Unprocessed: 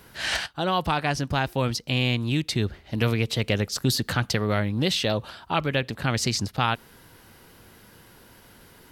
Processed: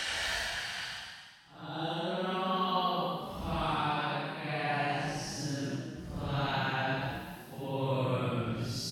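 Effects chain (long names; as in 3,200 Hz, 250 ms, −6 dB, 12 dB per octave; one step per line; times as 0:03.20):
extreme stretch with random phases 6.1×, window 0.10 s, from 0:00.30
echo with shifted repeats 247 ms, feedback 30%, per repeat +47 Hz, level −9 dB
level −9 dB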